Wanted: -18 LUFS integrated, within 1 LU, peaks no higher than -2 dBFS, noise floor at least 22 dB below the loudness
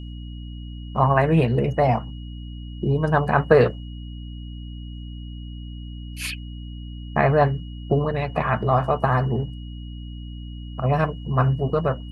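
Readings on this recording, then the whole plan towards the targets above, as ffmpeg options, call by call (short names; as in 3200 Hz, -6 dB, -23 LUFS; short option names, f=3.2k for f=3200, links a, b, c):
hum 60 Hz; harmonics up to 300 Hz; hum level -32 dBFS; steady tone 2900 Hz; tone level -48 dBFS; loudness -22.0 LUFS; peak -2.0 dBFS; loudness target -18.0 LUFS
-> -af "bandreject=f=60:t=h:w=4,bandreject=f=120:t=h:w=4,bandreject=f=180:t=h:w=4,bandreject=f=240:t=h:w=4,bandreject=f=300:t=h:w=4"
-af "bandreject=f=2.9k:w=30"
-af "volume=4dB,alimiter=limit=-2dB:level=0:latency=1"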